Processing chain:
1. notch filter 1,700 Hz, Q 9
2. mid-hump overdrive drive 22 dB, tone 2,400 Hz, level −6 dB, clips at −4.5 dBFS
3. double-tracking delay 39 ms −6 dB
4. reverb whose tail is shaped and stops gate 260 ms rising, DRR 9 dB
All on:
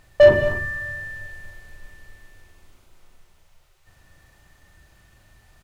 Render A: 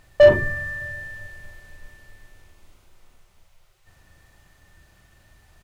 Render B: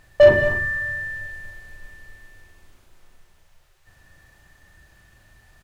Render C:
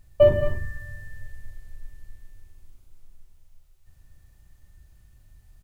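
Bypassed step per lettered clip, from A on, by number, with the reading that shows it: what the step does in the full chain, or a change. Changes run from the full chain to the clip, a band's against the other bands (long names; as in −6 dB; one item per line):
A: 4, change in momentary loudness spread +2 LU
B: 1, 2 kHz band +3.5 dB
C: 2, change in crest factor +3.0 dB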